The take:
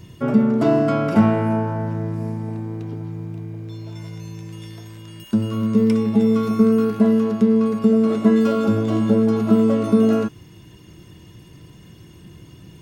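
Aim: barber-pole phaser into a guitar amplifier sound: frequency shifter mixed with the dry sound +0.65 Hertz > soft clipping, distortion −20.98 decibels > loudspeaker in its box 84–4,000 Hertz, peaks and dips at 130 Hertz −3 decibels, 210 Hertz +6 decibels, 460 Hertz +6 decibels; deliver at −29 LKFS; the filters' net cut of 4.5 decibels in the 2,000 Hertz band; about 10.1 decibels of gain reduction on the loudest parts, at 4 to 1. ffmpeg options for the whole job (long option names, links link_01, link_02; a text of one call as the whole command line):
ffmpeg -i in.wav -filter_complex "[0:a]equalizer=frequency=2000:width_type=o:gain=-6.5,acompressor=threshold=-23dB:ratio=4,asplit=2[link_01][link_02];[link_02]afreqshift=0.65[link_03];[link_01][link_03]amix=inputs=2:normalize=1,asoftclip=threshold=-19.5dB,highpass=84,equalizer=frequency=130:width_type=q:width=4:gain=-3,equalizer=frequency=210:width_type=q:width=4:gain=6,equalizer=frequency=460:width_type=q:width=4:gain=6,lowpass=frequency=4000:width=0.5412,lowpass=frequency=4000:width=1.3066,volume=-2.5dB" out.wav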